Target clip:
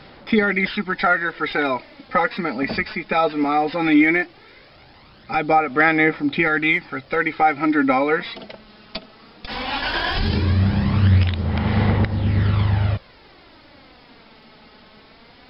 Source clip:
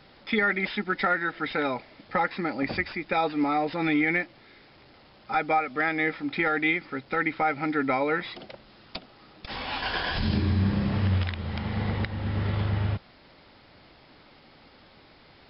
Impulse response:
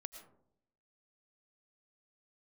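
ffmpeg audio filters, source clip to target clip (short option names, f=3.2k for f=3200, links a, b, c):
-af "aphaser=in_gain=1:out_gain=1:delay=4.7:decay=0.45:speed=0.17:type=sinusoidal,volume=5.5dB"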